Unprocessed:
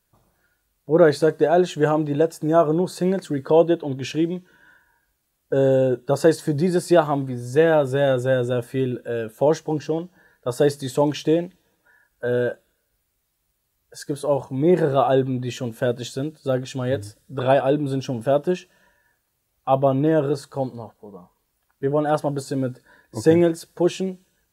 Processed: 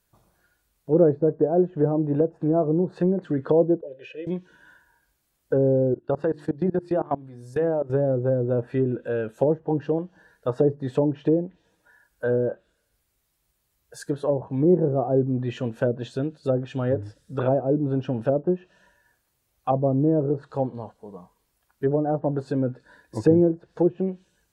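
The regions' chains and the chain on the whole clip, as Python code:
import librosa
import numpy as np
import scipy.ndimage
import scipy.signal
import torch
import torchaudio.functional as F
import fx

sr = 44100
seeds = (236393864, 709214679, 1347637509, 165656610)

y = fx.chain(x, sr, fx.vowel_filter(vowel='e'),
    fx.comb(ms=2.0, depth=0.61), at=(3.81, 4.27))
y = fx.chain(y, sr, fx.peak_eq(hz=6400.0, db=-4.0, octaves=0.41),
    fx.hum_notches(base_hz=50, count=7),
    fx.level_steps(step_db=21), at=(5.94, 7.9))
y = fx.env_lowpass_down(y, sr, base_hz=460.0, full_db=-16.5)
y = fx.dynamic_eq(y, sr, hz=4700.0, q=1.2, threshold_db=-54.0, ratio=4.0, max_db=-6)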